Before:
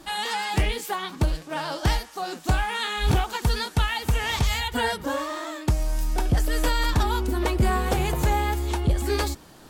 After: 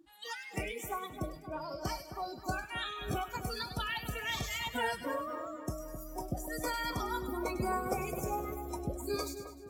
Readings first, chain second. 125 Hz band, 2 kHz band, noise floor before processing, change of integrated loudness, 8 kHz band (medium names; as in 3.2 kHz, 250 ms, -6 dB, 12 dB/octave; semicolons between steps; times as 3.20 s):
-17.0 dB, -10.0 dB, -47 dBFS, -11.5 dB, -10.0 dB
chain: spectral noise reduction 25 dB; high-pass 300 Hz 6 dB/octave; two-band feedback delay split 1.9 kHz, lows 262 ms, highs 101 ms, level -10 dB; trim -7 dB